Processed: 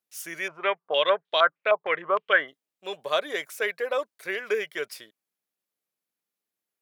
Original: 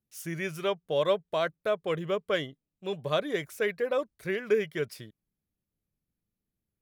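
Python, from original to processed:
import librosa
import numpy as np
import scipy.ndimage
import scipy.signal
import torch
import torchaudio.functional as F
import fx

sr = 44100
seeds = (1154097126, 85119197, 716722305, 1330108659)

y = scipy.signal.sosfilt(scipy.signal.butter(2, 600.0, 'highpass', fs=sr, output='sos'), x)
y = fx.filter_held_lowpass(y, sr, hz=6.5, low_hz=900.0, high_hz=3600.0, at=(0.48, 2.48))
y = y * 10.0 ** (5.0 / 20.0)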